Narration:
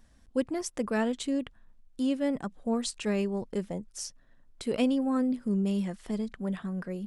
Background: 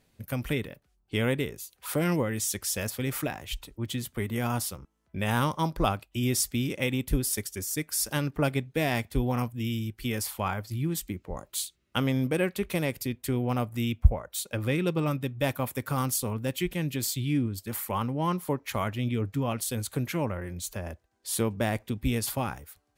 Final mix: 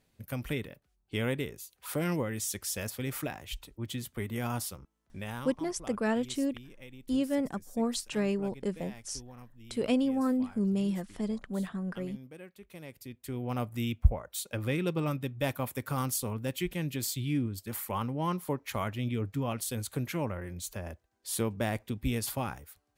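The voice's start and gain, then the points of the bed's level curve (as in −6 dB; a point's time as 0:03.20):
5.10 s, −1.0 dB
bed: 0:05.02 −4.5 dB
0:05.68 −21.5 dB
0:12.60 −21.5 dB
0:13.64 −3.5 dB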